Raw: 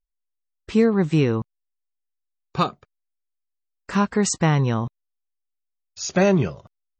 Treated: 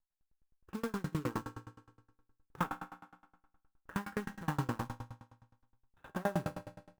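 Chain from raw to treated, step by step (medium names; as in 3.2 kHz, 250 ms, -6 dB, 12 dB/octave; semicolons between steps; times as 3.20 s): median filter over 41 samples; resampled via 8 kHz; 2.58–4.29 s: treble shelf 2.3 kHz +7 dB; compression 16:1, threshold -23 dBFS, peak gain reduction 11 dB; peak limiter -21 dBFS, peak gain reduction 6 dB; high-order bell 1.2 kHz +12 dB 1.2 oct; short-mantissa float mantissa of 2-bit; on a send at -2 dB: reverberation RT60 1.3 s, pre-delay 4 ms; on the sum: sawtooth tremolo in dB decaying 9.6 Hz, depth 30 dB; trim -1.5 dB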